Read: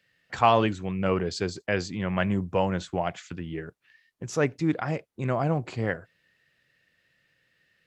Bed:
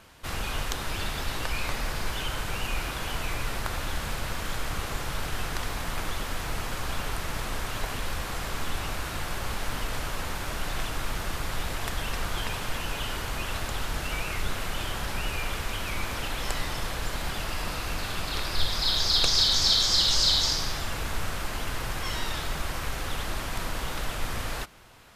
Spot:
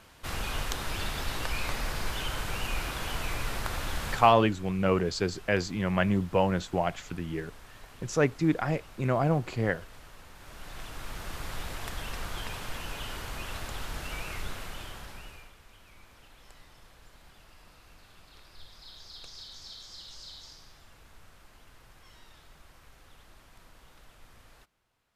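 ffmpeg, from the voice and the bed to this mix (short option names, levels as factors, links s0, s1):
-filter_complex "[0:a]adelay=3800,volume=1[s0];[1:a]volume=3.35,afade=t=out:st=4.11:d=0.23:silence=0.149624,afade=t=in:st=10.34:d=1.13:silence=0.237137,afade=t=out:st=14.34:d=1.19:silence=0.125893[s1];[s0][s1]amix=inputs=2:normalize=0"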